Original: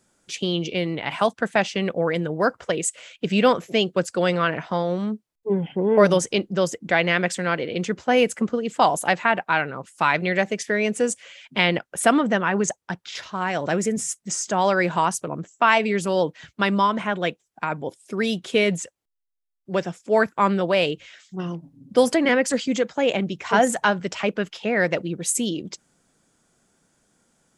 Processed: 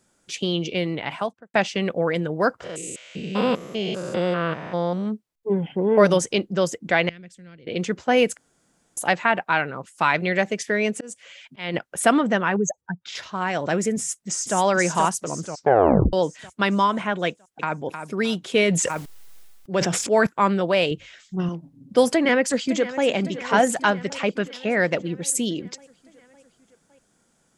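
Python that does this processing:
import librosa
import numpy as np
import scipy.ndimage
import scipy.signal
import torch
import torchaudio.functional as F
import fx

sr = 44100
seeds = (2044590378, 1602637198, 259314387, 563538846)

y = fx.studio_fade_out(x, sr, start_s=0.97, length_s=0.57)
y = fx.spec_steps(y, sr, hold_ms=200, at=(2.63, 5.05), fade=0.02)
y = fx.tone_stack(y, sr, knobs='10-0-1', at=(7.09, 7.67))
y = fx.auto_swell(y, sr, attack_ms=324.0, at=(10.9, 11.73), fade=0.02)
y = fx.spec_expand(y, sr, power=2.1, at=(12.56, 13.06))
y = fx.echo_throw(y, sr, start_s=13.98, length_s=0.59, ms=480, feedback_pct=50, wet_db=-3.5)
y = fx.echo_throw(y, sr, start_s=17.28, length_s=0.53, ms=310, feedback_pct=30, wet_db=-8.5)
y = fx.sustainer(y, sr, db_per_s=30.0, at=(18.43, 20.27))
y = fx.low_shelf(y, sr, hz=180.0, db=11.0, at=(20.91, 21.49))
y = fx.echo_throw(y, sr, start_s=22.09, length_s=0.97, ms=560, feedback_pct=65, wet_db=-14.5)
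y = fx.edit(y, sr, fx.room_tone_fill(start_s=8.37, length_s=0.6),
    fx.tape_stop(start_s=15.4, length_s=0.73), tone=tone)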